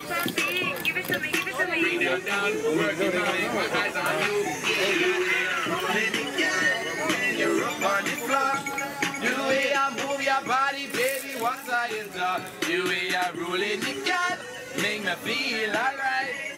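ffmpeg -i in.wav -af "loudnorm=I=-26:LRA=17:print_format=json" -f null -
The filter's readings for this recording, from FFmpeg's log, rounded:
"input_i" : "-25.4",
"input_tp" : "-9.5",
"input_lra" : "2.6",
"input_thresh" : "-35.4",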